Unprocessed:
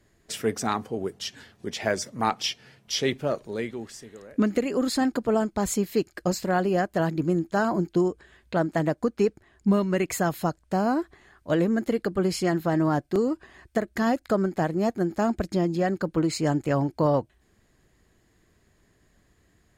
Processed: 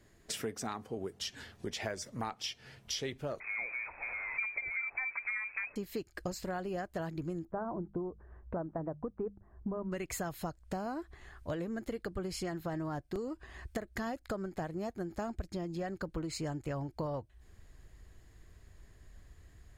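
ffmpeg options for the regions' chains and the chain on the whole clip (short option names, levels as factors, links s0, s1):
-filter_complex "[0:a]asettb=1/sr,asplit=3[s0][s1][s2];[s0]atrim=end=3.404[s3];[s1]atrim=start=3.4:end=5.76,asetpts=PTS-STARTPTS,afade=t=in:d=0.004:c=qsin,afade=t=out:st=2.356:d=0.004:c=qsin,aeval=exprs='val(0)+0.5*0.0188*sgn(val(0))':c=same,lowpass=f=2200:t=q:w=0.5098,lowpass=f=2200:t=q:w=0.6013,lowpass=f=2200:t=q:w=0.9,lowpass=f=2200:t=q:w=2.563,afreqshift=-2600[s4];[s2]atrim=start=5.756[s5];[s3][s4]acrossfade=d=0.004:c1=hsin:c2=qsin[s6];[s6][s5]acrossfade=d=0.004:c1=qsin:c2=hsin,asettb=1/sr,asplit=3[s7][s8][s9];[s7]atrim=end=7.454[s10];[s8]atrim=start=7.45:end=9.92,asetpts=PTS-STARTPTS,afade=t=in:d=0.004:c=qsin,afade=t=out:st=2.466:d=0.004:c=qsin,lowpass=f=1200:w=0.5412,lowpass=f=1200:w=1.3066,bandreject=f=50:t=h:w=6,bandreject=f=100:t=h:w=6,bandreject=f=150:t=h:w=6,bandreject=f=200:t=h:w=6[s11];[s9]atrim=start=9.916[s12];[s10][s11]acrossfade=d=0.004:c1=hsin:c2=qsin[s13];[s13][s12]acrossfade=d=0.004:c1=qsin:c2=hsin,asubboost=boost=5:cutoff=87,acompressor=threshold=0.0158:ratio=5"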